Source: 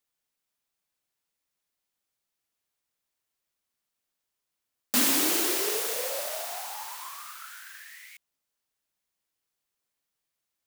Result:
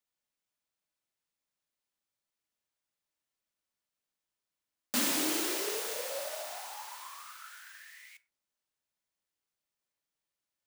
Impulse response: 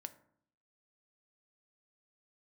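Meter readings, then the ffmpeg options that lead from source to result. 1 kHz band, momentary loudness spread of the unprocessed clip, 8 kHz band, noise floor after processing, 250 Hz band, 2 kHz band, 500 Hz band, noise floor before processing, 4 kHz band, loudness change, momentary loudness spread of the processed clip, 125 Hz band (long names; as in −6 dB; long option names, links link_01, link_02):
−5.0 dB, 21 LU, −6.5 dB, below −85 dBFS, −4.0 dB, −5.0 dB, −4.5 dB, −84 dBFS, −5.0 dB, −6.5 dB, 21 LU, −4.0 dB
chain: -filter_complex "[0:a]equalizer=frequency=16000:width_type=o:width=0.73:gain=-6[link_01];[1:a]atrim=start_sample=2205,atrim=end_sample=6174[link_02];[link_01][link_02]afir=irnorm=-1:irlink=0"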